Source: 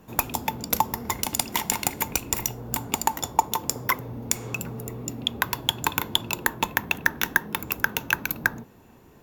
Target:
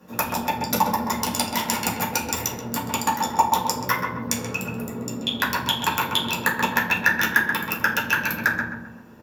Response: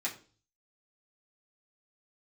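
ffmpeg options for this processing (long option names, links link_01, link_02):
-filter_complex "[0:a]asplit=2[link_01][link_02];[link_02]adelay=131,lowpass=frequency=1600:poles=1,volume=-3dB,asplit=2[link_03][link_04];[link_04]adelay=131,lowpass=frequency=1600:poles=1,volume=0.45,asplit=2[link_05][link_06];[link_06]adelay=131,lowpass=frequency=1600:poles=1,volume=0.45,asplit=2[link_07][link_08];[link_08]adelay=131,lowpass=frequency=1600:poles=1,volume=0.45,asplit=2[link_09][link_10];[link_10]adelay=131,lowpass=frequency=1600:poles=1,volume=0.45,asplit=2[link_11][link_12];[link_12]adelay=131,lowpass=frequency=1600:poles=1,volume=0.45[link_13];[link_01][link_03][link_05][link_07][link_09][link_11][link_13]amix=inputs=7:normalize=0[link_14];[1:a]atrim=start_sample=2205,asetrate=31752,aresample=44100[link_15];[link_14][link_15]afir=irnorm=-1:irlink=0,volume=-2.5dB"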